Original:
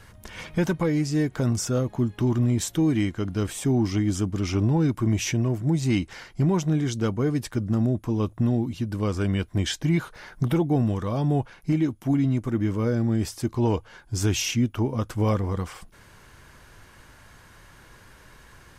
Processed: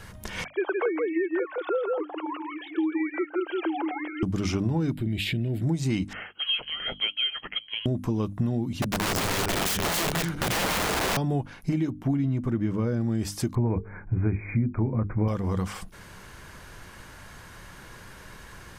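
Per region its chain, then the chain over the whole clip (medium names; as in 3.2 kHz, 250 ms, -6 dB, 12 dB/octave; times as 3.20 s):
0.44–4.23 s: formants replaced by sine waves + brick-wall FIR high-pass 320 Hz + delay 164 ms -3.5 dB
4.93–5.62 s: peaking EQ 3.9 kHz +8.5 dB 0.55 oct + compression 4:1, threshold -26 dBFS + static phaser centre 2.6 kHz, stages 4
6.13–7.86 s: brick-wall FIR high-pass 350 Hz + frequency inversion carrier 3.6 kHz
8.82–11.17 s: backward echo that repeats 128 ms, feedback 61%, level -4.5 dB + integer overflow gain 23.5 dB
11.90–13.01 s: tone controls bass +2 dB, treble -6 dB + tape noise reduction on one side only decoder only
13.55–15.28 s: brick-wall FIR low-pass 2.5 kHz + bass shelf 240 Hz +10 dB + hum notches 50/100/150/200/250/300/350/400/450 Hz
whole clip: peaking EQ 190 Hz +5.5 dB 0.22 oct; hum notches 50/100/150/200/250/300 Hz; compression 4:1, threshold -29 dBFS; trim +5 dB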